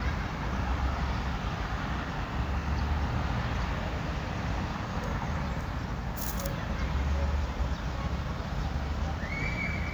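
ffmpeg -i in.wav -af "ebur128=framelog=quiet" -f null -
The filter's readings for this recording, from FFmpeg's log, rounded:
Integrated loudness:
  I:         -32.7 LUFS
  Threshold: -42.7 LUFS
Loudness range:
  LRA:         1.1 LU
  Threshold: -52.7 LUFS
  LRA low:   -33.4 LUFS
  LRA high:  -32.2 LUFS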